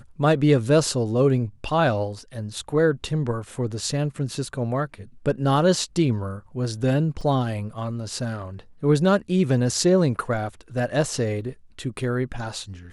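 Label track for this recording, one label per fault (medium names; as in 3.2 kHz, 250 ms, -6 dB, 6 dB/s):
7.210000	7.210000	dropout 3.6 ms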